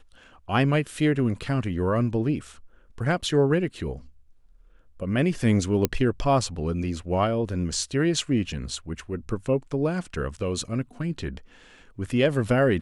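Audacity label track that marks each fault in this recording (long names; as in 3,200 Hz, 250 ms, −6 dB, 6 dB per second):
5.850000	5.850000	click −7 dBFS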